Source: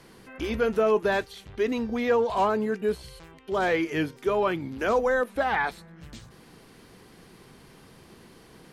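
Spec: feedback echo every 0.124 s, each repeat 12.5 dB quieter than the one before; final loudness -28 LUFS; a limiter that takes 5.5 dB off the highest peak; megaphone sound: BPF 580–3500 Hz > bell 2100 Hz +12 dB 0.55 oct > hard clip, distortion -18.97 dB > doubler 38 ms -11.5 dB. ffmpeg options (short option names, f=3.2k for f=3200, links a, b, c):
-filter_complex "[0:a]alimiter=limit=-19dB:level=0:latency=1,highpass=580,lowpass=3.5k,equalizer=f=2.1k:t=o:w=0.55:g=12,aecho=1:1:124|248|372:0.237|0.0569|0.0137,asoftclip=type=hard:threshold=-21dB,asplit=2[a][b];[b]adelay=38,volume=-11.5dB[c];[a][c]amix=inputs=2:normalize=0,volume=1dB"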